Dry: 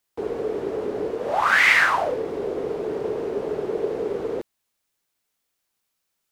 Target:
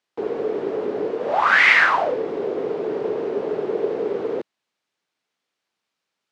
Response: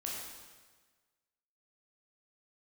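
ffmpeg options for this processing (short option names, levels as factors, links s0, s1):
-af "highpass=160,lowpass=4500,volume=1.33"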